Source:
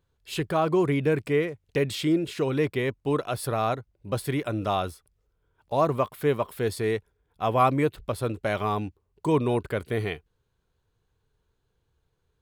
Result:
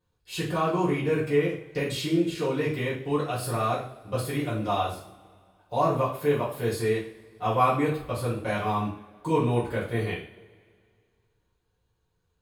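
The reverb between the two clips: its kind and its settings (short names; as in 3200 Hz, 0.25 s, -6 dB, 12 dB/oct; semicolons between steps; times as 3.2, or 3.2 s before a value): two-slope reverb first 0.46 s, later 2.1 s, from -22 dB, DRR -9 dB; gain -9.5 dB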